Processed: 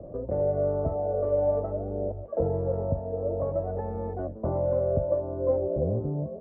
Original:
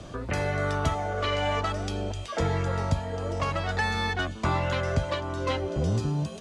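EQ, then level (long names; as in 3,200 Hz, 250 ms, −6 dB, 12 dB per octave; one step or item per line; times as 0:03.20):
transistor ladder low-pass 620 Hz, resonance 65%
+7.5 dB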